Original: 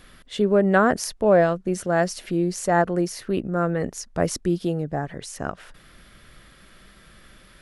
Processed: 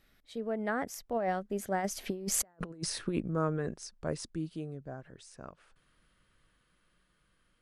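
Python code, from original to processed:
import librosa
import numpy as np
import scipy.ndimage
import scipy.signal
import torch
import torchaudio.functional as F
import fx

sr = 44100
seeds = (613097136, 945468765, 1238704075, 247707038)

y = fx.doppler_pass(x, sr, speed_mps=32, closest_m=4.6, pass_at_s=2.54)
y = fx.over_compress(y, sr, threshold_db=-36.0, ratio=-0.5)
y = y * 10.0 ** (2.0 / 20.0)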